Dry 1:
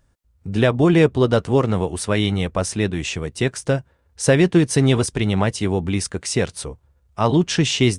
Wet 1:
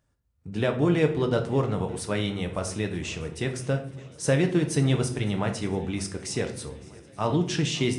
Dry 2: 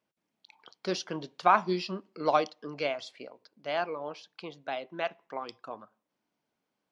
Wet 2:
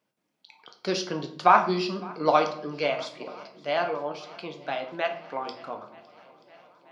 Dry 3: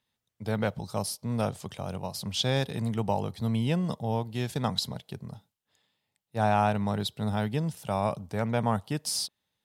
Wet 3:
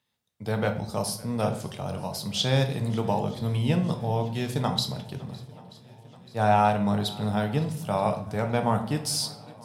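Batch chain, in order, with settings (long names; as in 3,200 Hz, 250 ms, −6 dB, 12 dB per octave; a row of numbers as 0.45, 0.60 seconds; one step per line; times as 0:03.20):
high-pass filter 54 Hz
feedback echo with a long and a short gap by turns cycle 932 ms, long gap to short 1.5 to 1, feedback 61%, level −23 dB
rectangular room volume 120 cubic metres, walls mixed, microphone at 0.45 metres
loudness normalisation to −27 LKFS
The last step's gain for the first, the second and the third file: −9.0, +3.5, +1.5 decibels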